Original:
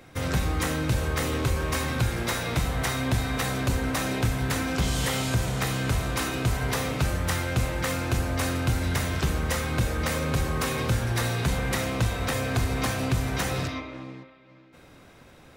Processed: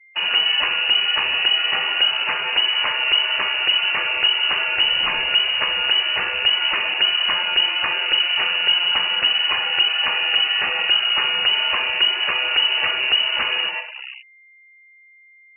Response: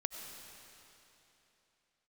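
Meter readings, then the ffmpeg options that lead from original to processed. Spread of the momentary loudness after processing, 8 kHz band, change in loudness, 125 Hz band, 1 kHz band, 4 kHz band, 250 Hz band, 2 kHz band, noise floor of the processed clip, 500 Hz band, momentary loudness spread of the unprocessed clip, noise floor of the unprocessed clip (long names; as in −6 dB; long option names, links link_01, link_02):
3 LU, below −40 dB, +10.0 dB, below −25 dB, +4.5 dB, +21.0 dB, −16.5 dB, +11.5 dB, −51 dBFS, −4.0 dB, 2 LU, −52 dBFS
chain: -filter_complex "[0:a]asplit=2[link_01][link_02];[1:a]atrim=start_sample=2205,afade=type=out:start_time=0.32:duration=0.01,atrim=end_sample=14553[link_03];[link_02][link_03]afir=irnorm=-1:irlink=0,volume=-15dB[link_04];[link_01][link_04]amix=inputs=2:normalize=0,aeval=exprs='val(0)*gte(abs(val(0)),0.0168)':channel_layout=same,lowpass=frequency=2600:width_type=q:width=0.5098,lowpass=frequency=2600:width_type=q:width=0.6013,lowpass=frequency=2600:width_type=q:width=0.9,lowpass=frequency=2600:width_type=q:width=2.563,afreqshift=-3000,aeval=exprs='val(0)+0.00224*sin(2*PI*2100*n/s)':channel_layout=same,afftfilt=real='re*gte(hypot(re,im),0.0126)':imag='im*gte(hypot(re,im),0.0126)':win_size=1024:overlap=0.75,volume=5.5dB"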